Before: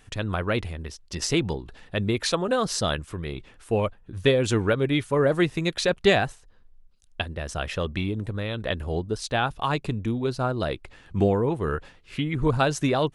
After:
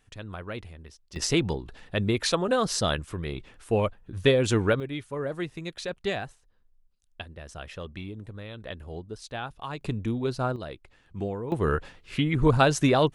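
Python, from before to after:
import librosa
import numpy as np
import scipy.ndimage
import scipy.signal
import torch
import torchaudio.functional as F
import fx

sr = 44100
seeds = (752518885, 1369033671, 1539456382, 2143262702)

y = fx.gain(x, sr, db=fx.steps((0.0, -11.0), (1.16, -0.5), (4.8, -10.5), (9.81, -2.0), (10.56, -10.5), (11.52, 2.0)))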